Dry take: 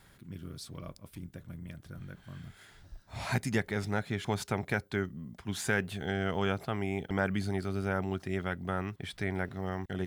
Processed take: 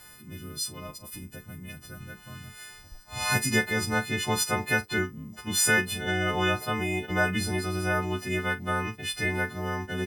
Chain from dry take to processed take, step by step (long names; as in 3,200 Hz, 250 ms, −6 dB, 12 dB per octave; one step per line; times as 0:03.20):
every partial snapped to a pitch grid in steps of 3 semitones
double-tracking delay 41 ms −14 dB
level +4 dB